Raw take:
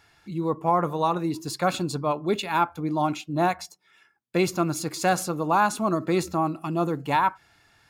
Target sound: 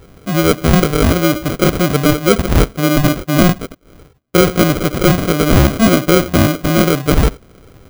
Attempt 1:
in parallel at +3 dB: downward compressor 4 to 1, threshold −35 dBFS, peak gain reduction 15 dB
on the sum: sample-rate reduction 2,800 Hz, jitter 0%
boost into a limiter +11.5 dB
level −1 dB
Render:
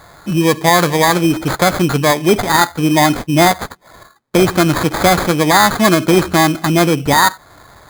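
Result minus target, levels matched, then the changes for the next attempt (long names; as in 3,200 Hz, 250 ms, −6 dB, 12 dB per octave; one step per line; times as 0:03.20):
sample-rate reduction: distortion −13 dB
change: sample-rate reduction 900 Hz, jitter 0%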